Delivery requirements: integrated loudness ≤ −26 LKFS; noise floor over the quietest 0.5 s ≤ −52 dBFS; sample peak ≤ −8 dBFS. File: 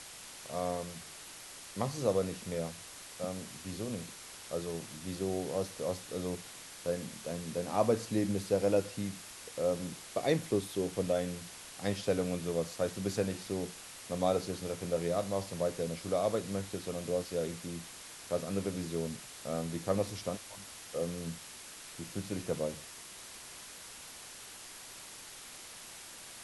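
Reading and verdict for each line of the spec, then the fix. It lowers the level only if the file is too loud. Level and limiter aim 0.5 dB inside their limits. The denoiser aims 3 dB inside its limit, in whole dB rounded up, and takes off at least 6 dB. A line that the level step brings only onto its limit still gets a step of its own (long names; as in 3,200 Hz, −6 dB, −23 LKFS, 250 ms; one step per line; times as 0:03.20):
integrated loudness −36.5 LKFS: in spec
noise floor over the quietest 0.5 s −49 dBFS: out of spec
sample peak −15.5 dBFS: in spec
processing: broadband denoise 6 dB, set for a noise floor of −49 dBFS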